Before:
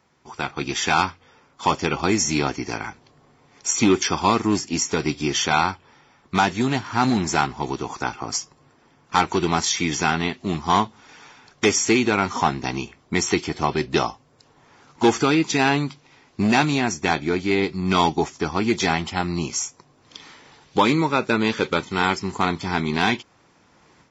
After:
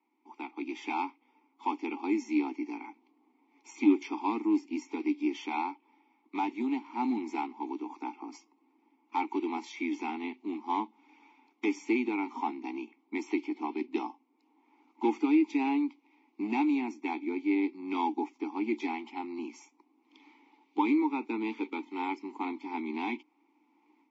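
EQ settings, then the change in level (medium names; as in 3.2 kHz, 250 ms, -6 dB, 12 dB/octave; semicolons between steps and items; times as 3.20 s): vowel filter u; Chebyshev high-pass 230 Hz, order 5; 0.0 dB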